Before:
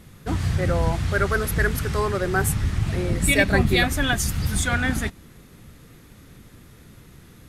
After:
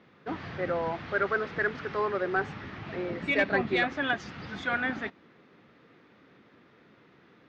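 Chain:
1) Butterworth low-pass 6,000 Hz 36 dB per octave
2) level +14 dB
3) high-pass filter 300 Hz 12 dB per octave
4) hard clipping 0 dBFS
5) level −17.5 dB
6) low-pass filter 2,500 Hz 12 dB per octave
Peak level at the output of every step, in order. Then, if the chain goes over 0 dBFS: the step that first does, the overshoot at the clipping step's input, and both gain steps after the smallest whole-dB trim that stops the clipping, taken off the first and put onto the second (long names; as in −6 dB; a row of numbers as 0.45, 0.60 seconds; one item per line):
−5.5, +8.5, +8.0, 0.0, −17.5, −17.0 dBFS
step 2, 8.0 dB
step 2 +6 dB, step 5 −9.5 dB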